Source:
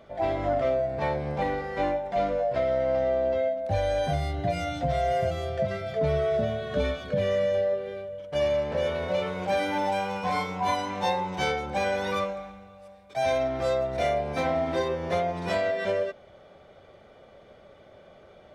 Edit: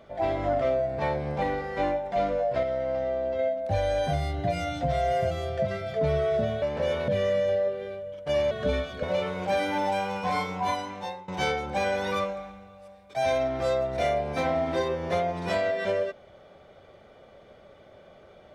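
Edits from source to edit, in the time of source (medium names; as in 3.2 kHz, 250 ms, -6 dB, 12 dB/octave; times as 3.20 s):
2.63–3.39 s: gain -3.5 dB
6.62–7.14 s: swap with 8.57–9.03 s
10.56–11.28 s: fade out, to -20.5 dB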